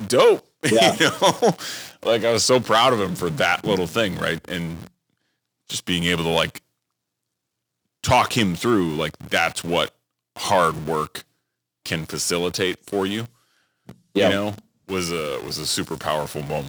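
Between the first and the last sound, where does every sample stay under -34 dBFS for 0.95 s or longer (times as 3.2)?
6.58–8.04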